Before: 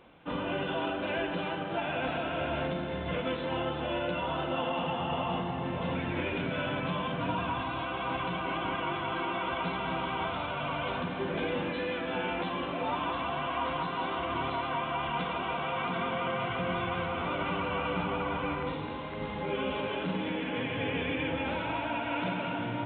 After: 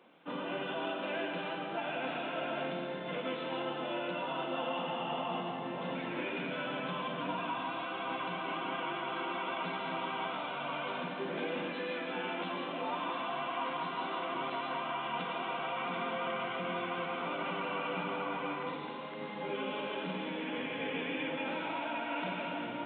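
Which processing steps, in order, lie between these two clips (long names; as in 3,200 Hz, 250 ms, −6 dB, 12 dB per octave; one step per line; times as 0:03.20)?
high-pass filter 180 Hz 24 dB per octave
on a send: spectral tilt +2.5 dB per octave + convolution reverb RT60 0.85 s, pre-delay 75 ms, DRR 6 dB
on the sum: level −4.5 dB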